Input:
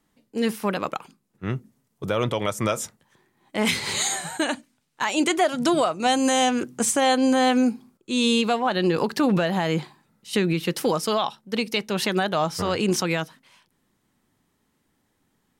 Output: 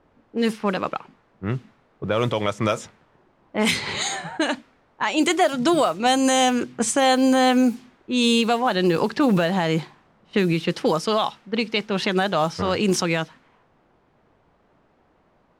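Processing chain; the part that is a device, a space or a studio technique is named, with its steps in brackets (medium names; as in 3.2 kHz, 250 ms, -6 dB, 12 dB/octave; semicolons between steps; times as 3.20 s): cassette deck with a dynamic noise filter (white noise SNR 26 dB; level-controlled noise filter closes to 820 Hz, open at -17 dBFS); trim +2 dB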